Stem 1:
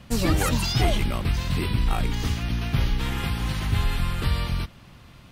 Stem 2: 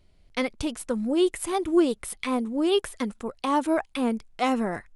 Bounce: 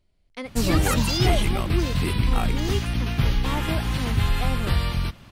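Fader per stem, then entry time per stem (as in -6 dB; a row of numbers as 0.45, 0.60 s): +1.5, -8.0 dB; 0.45, 0.00 s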